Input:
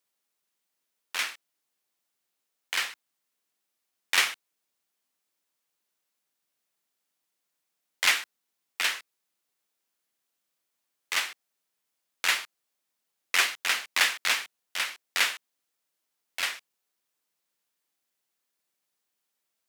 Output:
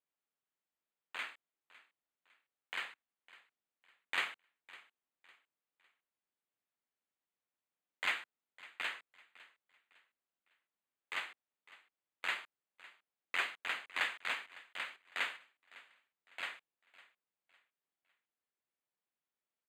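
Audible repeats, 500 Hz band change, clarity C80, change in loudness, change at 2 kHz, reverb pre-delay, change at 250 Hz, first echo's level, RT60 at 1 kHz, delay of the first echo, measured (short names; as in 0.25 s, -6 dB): 2, -8.5 dB, none, -12.5 dB, -10.5 dB, none, -8.5 dB, -20.0 dB, none, 0.555 s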